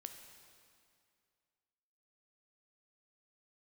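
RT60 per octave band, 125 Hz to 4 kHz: 2.4 s, 2.3 s, 2.3 s, 2.3 s, 2.2 s, 2.0 s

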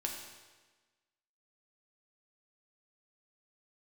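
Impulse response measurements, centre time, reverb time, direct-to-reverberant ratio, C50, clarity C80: 48 ms, 1.3 s, 0.0 dB, 4.0 dB, 5.5 dB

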